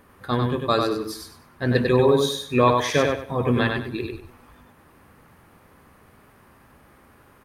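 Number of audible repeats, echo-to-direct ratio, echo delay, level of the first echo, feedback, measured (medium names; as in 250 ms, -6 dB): 3, -3.5 dB, 97 ms, -4.0 dB, 27%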